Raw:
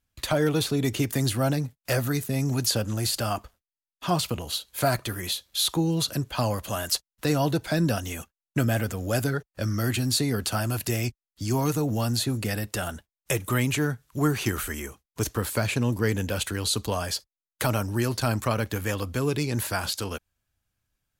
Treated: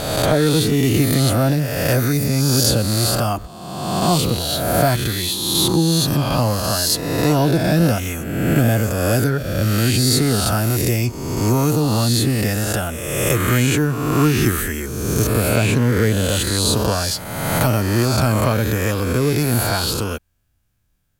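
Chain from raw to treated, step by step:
peak hold with a rise ahead of every peak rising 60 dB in 1.43 s
low-shelf EQ 480 Hz +7 dB
in parallel at −10 dB: soft clipping −16.5 dBFS, distortion −13 dB
on the sum: high-shelf EQ 12,000 Hz +6 dB

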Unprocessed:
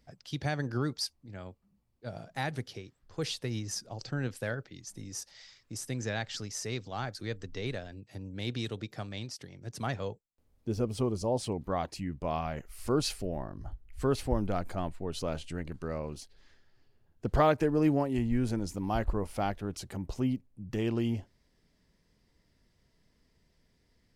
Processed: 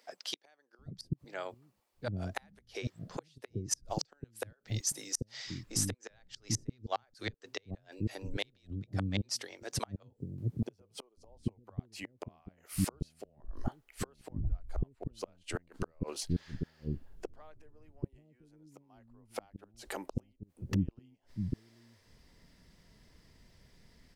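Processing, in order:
0:03.84–0:05.16: high-shelf EQ 7,200 Hz +10 dB
gate with flip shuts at −26 dBFS, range −39 dB
multiband delay without the direct sound highs, lows 790 ms, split 370 Hz
level +8.5 dB

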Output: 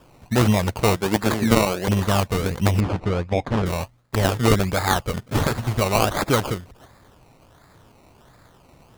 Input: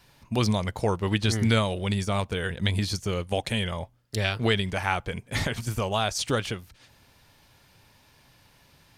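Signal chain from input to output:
0:00.96–0:01.88: high-pass filter 190 Hz 12 dB per octave
sample-and-hold swept by an LFO 21×, swing 60% 1.4 Hz
0:02.80–0:03.66: head-to-tape spacing loss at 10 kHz 21 dB
level +6.5 dB

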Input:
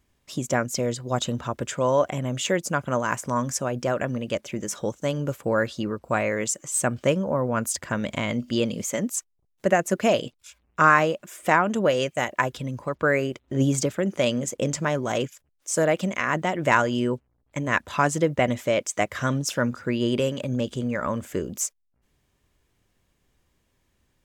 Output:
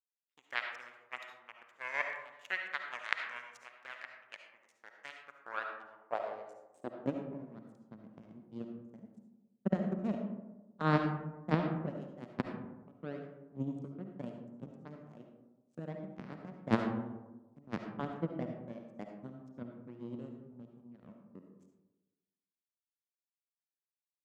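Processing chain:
power curve on the samples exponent 3
high-shelf EQ 9,300 Hz +6 dB
in parallel at −11 dB: bit-depth reduction 8 bits, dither none
on the sum: band-pass filter sweep 2,000 Hz → 200 Hz, 0:05.10–0:07.32
on a send at −3.5 dB: convolution reverb RT60 1.1 s, pre-delay 30 ms
on the sum: level +13.5 dB

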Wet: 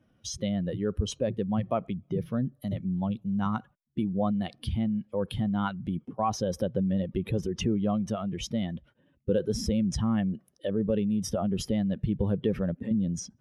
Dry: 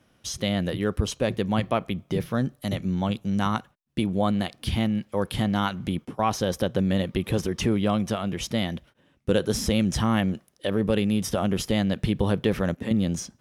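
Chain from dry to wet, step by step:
expanding power law on the bin magnitudes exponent 1.6
level −3.5 dB

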